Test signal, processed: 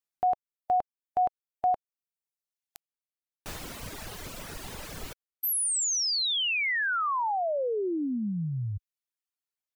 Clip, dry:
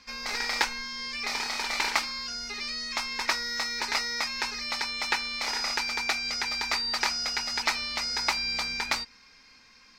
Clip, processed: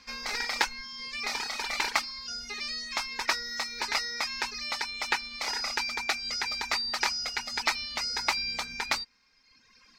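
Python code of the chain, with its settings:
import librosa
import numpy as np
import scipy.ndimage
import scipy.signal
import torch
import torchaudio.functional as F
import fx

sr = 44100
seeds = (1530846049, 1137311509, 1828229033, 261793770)

y = fx.dereverb_blind(x, sr, rt60_s=1.3)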